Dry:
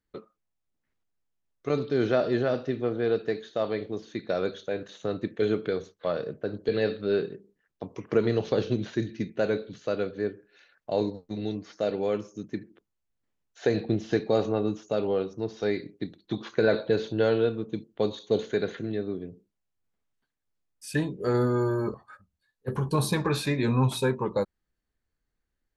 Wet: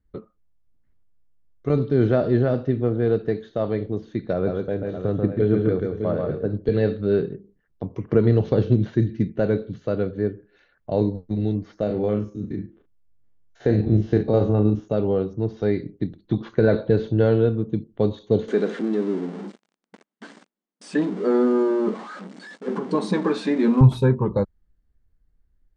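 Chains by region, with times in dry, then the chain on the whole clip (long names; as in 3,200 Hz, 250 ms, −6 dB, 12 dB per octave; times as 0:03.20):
0:04.33–0:06.50: low-pass filter 2,100 Hz 6 dB per octave + multi-tap delay 138/184/512/607 ms −3.5/−16/−16.5/−9.5 dB
0:11.83–0:14.88: spectrum averaged block by block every 50 ms + double-tracking delay 38 ms −7.5 dB
0:18.48–0:23.81: converter with a step at zero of −33 dBFS + linear-phase brick-wall band-pass 180–9,400 Hz
whole clip: RIAA equalisation playback; notch filter 2,500 Hz, Q 17; level +1 dB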